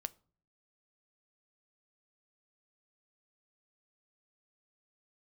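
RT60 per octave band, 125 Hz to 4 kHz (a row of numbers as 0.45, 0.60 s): 0.75, 0.70, 0.50, 0.45, 0.30, 0.30 s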